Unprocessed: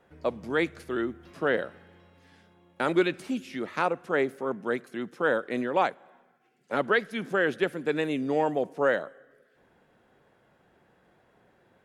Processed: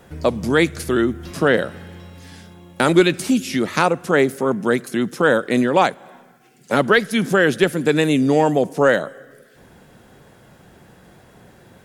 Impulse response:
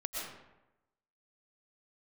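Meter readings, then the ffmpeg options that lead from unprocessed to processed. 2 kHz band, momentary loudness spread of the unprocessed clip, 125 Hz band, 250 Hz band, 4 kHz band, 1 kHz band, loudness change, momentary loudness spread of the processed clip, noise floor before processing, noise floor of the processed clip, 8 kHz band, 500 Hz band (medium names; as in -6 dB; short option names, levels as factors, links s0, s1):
+9.5 dB, 8 LU, +16.0 dB, +12.5 dB, +13.5 dB, +9.0 dB, +10.5 dB, 6 LU, -65 dBFS, -50 dBFS, no reading, +9.5 dB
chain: -filter_complex "[0:a]bass=f=250:g=8,treble=f=4000:g=12,asplit=2[s0][s1];[s1]acompressor=threshold=0.0251:ratio=6,volume=1.06[s2];[s0][s2]amix=inputs=2:normalize=0,volume=2.11"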